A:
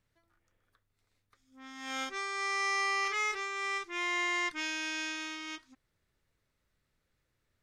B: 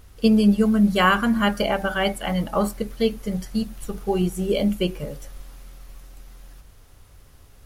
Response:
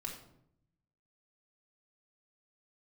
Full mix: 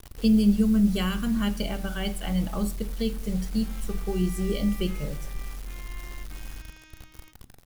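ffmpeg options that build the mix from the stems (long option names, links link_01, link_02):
-filter_complex "[0:a]adelay=1750,volume=-16.5dB[link_01];[1:a]acrossover=split=310|3000[link_02][link_03][link_04];[link_03]acompressor=threshold=-34dB:ratio=5[link_05];[link_02][link_05][link_04]amix=inputs=3:normalize=0,acrusher=bits=6:mix=0:aa=0.000001,volume=-5dB,asplit=2[link_06][link_07];[link_07]volume=-8dB[link_08];[2:a]atrim=start_sample=2205[link_09];[link_08][link_09]afir=irnorm=-1:irlink=0[link_10];[link_01][link_06][link_10]amix=inputs=3:normalize=0,lowshelf=frequency=86:gain=9.5"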